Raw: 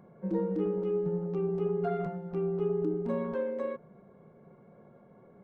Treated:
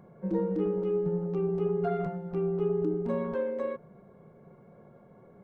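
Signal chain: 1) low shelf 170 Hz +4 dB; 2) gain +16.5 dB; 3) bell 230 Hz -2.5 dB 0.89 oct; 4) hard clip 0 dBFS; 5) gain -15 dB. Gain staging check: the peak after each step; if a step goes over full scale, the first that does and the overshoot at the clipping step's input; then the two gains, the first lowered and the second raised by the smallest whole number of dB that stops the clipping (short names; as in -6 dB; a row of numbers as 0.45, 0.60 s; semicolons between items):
-19.5, -3.0, -3.5, -3.5, -18.5 dBFS; no overload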